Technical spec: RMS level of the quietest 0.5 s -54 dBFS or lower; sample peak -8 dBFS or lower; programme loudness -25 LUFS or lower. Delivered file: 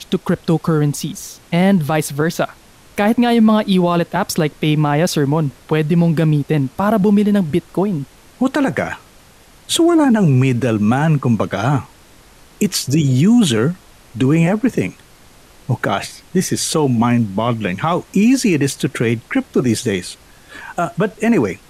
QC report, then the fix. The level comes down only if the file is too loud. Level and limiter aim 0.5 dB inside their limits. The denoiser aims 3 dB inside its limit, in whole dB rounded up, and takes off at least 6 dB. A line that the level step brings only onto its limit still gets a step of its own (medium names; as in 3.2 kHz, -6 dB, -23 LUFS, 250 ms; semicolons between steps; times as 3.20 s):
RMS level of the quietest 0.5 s -46 dBFS: fail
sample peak -5.5 dBFS: fail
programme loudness -16.5 LUFS: fail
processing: trim -9 dB